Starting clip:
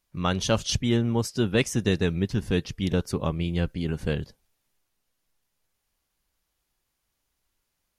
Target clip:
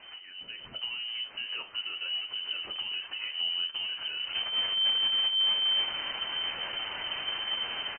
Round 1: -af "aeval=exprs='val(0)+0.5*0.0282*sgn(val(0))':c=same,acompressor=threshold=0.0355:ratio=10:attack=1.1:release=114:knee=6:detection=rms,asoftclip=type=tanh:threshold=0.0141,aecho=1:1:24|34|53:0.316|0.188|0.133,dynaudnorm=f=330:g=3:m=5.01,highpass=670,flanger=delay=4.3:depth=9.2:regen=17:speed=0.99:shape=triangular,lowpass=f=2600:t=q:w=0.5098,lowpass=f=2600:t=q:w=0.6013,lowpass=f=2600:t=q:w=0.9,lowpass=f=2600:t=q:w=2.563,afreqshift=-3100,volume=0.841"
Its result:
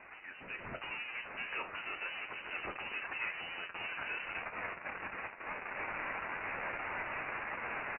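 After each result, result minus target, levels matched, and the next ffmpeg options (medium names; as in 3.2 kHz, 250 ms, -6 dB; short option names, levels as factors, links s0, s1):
500 Hz band +13.5 dB; compression: peak gain reduction -9 dB
-af "aeval=exprs='val(0)+0.5*0.0282*sgn(val(0))':c=same,acompressor=threshold=0.0355:ratio=10:attack=1.1:release=114:knee=6:detection=rms,asoftclip=type=tanh:threshold=0.0141,aecho=1:1:24|34|53:0.316|0.188|0.133,dynaudnorm=f=330:g=3:m=5.01,flanger=delay=4.3:depth=9.2:regen=17:speed=0.99:shape=triangular,lowpass=f=2600:t=q:w=0.5098,lowpass=f=2600:t=q:w=0.6013,lowpass=f=2600:t=q:w=0.9,lowpass=f=2600:t=q:w=2.563,afreqshift=-3100,volume=0.841"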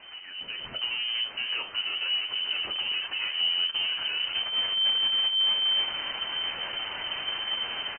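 compression: peak gain reduction -9 dB
-af "aeval=exprs='val(0)+0.5*0.0282*sgn(val(0))':c=same,acompressor=threshold=0.0112:ratio=10:attack=1.1:release=114:knee=6:detection=rms,asoftclip=type=tanh:threshold=0.0141,aecho=1:1:24|34|53:0.316|0.188|0.133,dynaudnorm=f=330:g=3:m=5.01,flanger=delay=4.3:depth=9.2:regen=17:speed=0.99:shape=triangular,lowpass=f=2600:t=q:w=0.5098,lowpass=f=2600:t=q:w=0.6013,lowpass=f=2600:t=q:w=0.9,lowpass=f=2600:t=q:w=2.563,afreqshift=-3100,volume=0.841"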